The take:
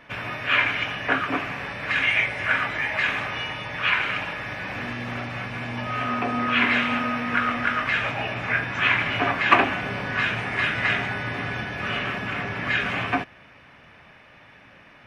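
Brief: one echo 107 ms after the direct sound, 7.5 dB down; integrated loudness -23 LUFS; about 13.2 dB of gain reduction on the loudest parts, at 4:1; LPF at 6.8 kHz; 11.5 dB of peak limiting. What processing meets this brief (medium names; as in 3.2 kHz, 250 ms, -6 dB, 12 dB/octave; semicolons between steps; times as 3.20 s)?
low-pass 6.8 kHz; compression 4:1, threshold -28 dBFS; peak limiter -25 dBFS; delay 107 ms -7.5 dB; trim +9.5 dB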